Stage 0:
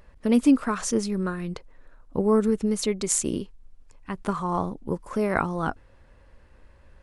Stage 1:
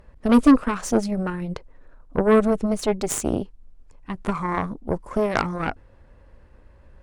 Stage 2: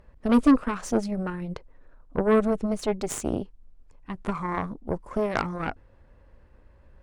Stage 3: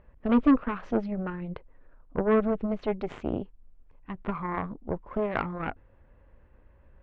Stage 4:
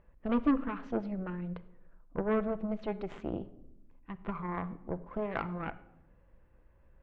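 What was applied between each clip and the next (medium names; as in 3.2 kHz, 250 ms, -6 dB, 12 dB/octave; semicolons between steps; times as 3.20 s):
tilt shelf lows +4 dB, about 1.4 kHz; Chebyshev shaper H 6 -14 dB, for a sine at -5.5 dBFS
treble shelf 6.6 kHz -4.5 dB; trim -4 dB
low-pass 3.1 kHz 24 dB/octave; trim -2.5 dB
simulated room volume 2800 m³, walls furnished, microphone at 0.74 m; trim -6 dB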